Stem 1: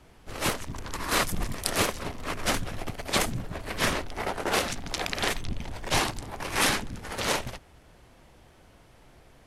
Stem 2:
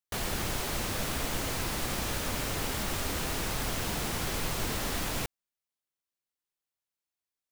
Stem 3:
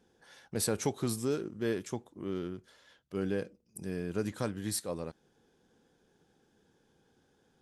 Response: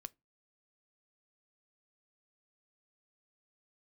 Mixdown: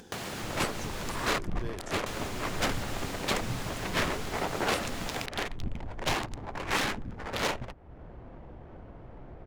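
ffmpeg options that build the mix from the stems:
-filter_complex "[0:a]alimiter=limit=-14dB:level=0:latency=1:release=223,adynamicsmooth=sensitivity=6:basefreq=1000,adelay=150,volume=-1.5dB[link_01];[1:a]highpass=frequency=97:width=0.5412,highpass=frequency=97:width=1.3066,volume=1.5dB,asplit=3[link_02][link_03][link_04];[link_02]atrim=end=1.28,asetpts=PTS-STARTPTS,afade=type=out:start_time=1.276:duration=0.004:curve=hsin[link_05];[link_03]atrim=start=1.28:end=2.06,asetpts=PTS-STARTPTS,volume=0[link_06];[link_04]atrim=start=2.06,asetpts=PTS-STARTPTS,afade=type=in:duration=0.004:curve=hsin[link_07];[link_05][link_06][link_07]concat=n=3:v=0:a=1[link_08];[2:a]highshelf=frequency=4900:gain=9,volume=-6.5dB[link_09];[link_08][link_09]amix=inputs=2:normalize=0,highshelf=frequency=8600:gain=-11,acompressor=threshold=-35dB:ratio=6,volume=0dB[link_10];[link_01][link_10]amix=inputs=2:normalize=0,equalizer=frequency=7000:width=6.8:gain=2.5,acompressor=mode=upward:threshold=-34dB:ratio=2.5"

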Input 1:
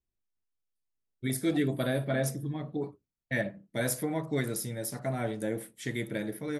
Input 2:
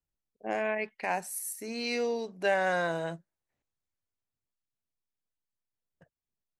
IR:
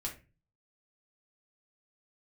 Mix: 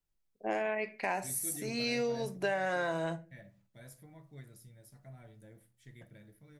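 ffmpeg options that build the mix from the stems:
-filter_complex "[0:a]asubboost=boost=7.5:cutoff=110,acrusher=bits=9:mix=0:aa=0.000001,volume=-17.5dB,asplit=2[link_01][link_02];[link_02]volume=-16dB[link_03];[1:a]volume=-1.5dB,asplit=3[link_04][link_05][link_06];[link_05]volume=-4dB[link_07];[link_06]apad=whole_len=290690[link_08];[link_01][link_08]sidechaingate=range=-8dB:threshold=-47dB:ratio=16:detection=peak[link_09];[2:a]atrim=start_sample=2205[link_10];[link_03][link_07]amix=inputs=2:normalize=0[link_11];[link_11][link_10]afir=irnorm=-1:irlink=0[link_12];[link_09][link_04][link_12]amix=inputs=3:normalize=0,acompressor=threshold=-29dB:ratio=6"

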